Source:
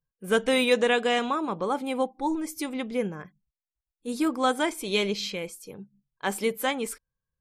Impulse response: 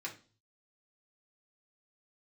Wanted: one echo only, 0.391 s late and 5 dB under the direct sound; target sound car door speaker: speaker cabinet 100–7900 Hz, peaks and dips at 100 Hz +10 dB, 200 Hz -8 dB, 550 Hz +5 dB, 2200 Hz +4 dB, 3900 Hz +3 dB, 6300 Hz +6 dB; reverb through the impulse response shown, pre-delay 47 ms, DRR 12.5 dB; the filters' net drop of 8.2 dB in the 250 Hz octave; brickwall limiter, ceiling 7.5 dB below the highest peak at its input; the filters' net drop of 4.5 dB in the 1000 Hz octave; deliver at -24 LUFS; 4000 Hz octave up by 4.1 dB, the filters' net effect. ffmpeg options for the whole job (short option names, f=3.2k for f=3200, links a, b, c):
-filter_complex "[0:a]equalizer=f=250:t=o:g=-8,equalizer=f=1k:t=o:g=-6.5,equalizer=f=4k:t=o:g=3,alimiter=limit=-18dB:level=0:latency=1,aecho=1:1:391:0.562,asplit=2[a][b];[1:a]atrim=start_sample=2205,adelay=47[c];[b][c]afir=irnorm=-1:irlink=0,volume=-13dB[d];[a][d]amix=inputs=2:normalize=0,highpass=100,equalizer=f=100:t=q:w=4:g=10,equalizer=f=200:t=q:w=4:g=-8,equalizer=f=550:t=q:w=4:g=5,equalizer=f=2.2k:t=q:w=4:g=4,equalizer=f=3.9k:t=q:w=4:g=3,equalizer=f=6.3k:t=q:w=4:g=6,lowpass=f=7.9k:w=0.5412,lowpass=f=7.9k:w=1.3066,volume=4.5dB"